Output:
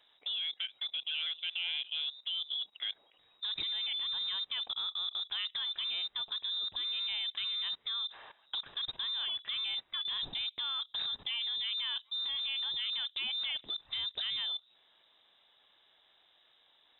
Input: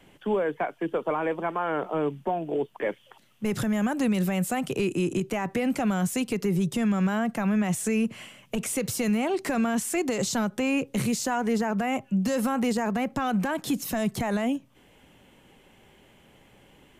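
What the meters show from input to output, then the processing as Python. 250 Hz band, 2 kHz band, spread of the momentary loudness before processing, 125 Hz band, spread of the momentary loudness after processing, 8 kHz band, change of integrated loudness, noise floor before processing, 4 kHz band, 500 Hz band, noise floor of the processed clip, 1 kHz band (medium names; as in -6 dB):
under -40 dB, -10.0 dB, 5 LU, under -30 dB, 4 LU, under -40 dB, -6.5 dB, -58 dBFS, +11.0 dB, under -35 dB, -68 dBFS, -21.0 dB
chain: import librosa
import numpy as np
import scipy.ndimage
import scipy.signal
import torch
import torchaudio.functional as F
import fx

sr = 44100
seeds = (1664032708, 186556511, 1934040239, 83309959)

y = fx.rattle_buzz(x, sr, strikes_db=-32.0, level_db=-38.0)
y = fx.dynamic_eq(y, sr, hz=2000.0, q=1.4, threshold_db=-43.0, ratio=4.0, max_db=-3)
y = fx.level_steps(y, sr, step_db=16)
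y = fx.freq_invert(y, sr, carrier_hz=3800)
y = y * librosa.db_to_amplitude(-3.5)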